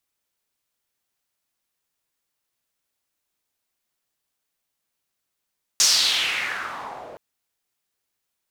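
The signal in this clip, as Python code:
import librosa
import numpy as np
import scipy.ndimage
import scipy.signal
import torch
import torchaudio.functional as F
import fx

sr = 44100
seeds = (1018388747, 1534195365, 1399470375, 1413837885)

y = fx.riser_noise(sr, seeds[0], length_s=1.37, colour='pink', kind='bandpass', start_hz=6200.0, end_hz=560.0, q=3.3, swell_db=-25, law='exponential')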